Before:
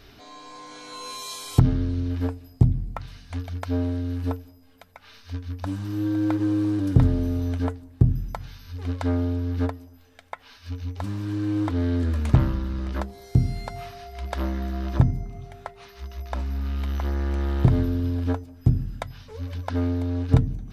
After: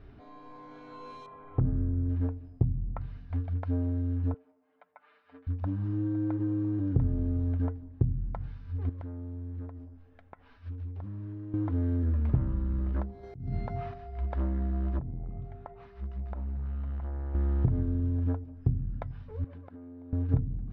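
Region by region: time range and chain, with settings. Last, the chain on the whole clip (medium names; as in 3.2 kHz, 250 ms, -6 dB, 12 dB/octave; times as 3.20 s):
1.26–2.09 s: low-pass 1.9 kHz 24 dB/octave + hard clipper -12.5 dBFS
4.34–5.47 s: high-pass 620 Hz + distance through air 280 m + comb 6.7 ms, depth 74%
8.89–11.54 s: compression 20:1, threshold -35 dBFS + loudspeaker Doppler distortion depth 0.31 ms
13.23–13.94 s: high-pass 79 Hz 6 dB/octave + compressor with a negative ratio -34 dBFS
14.99–17.35 s: dynamic bell 770 Hz, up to +6 dB, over -44 dBFS, Q 0.73 + compression 20:1, threshold -29 dBFS + transformer saturation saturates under 290 Hz
19.44–20.13 s: high-pass 190 Hz + treble shelf 4.2 kHz -11.5 dB + compression 20:1, threshold -40 dBFS
whole clip: compression 2.5:1, threshold -27 dBFS; low-pass 1.7 kHz 12 dB/octave; bass shelf 320 Hz +9.5 dB; trim -7.5 dB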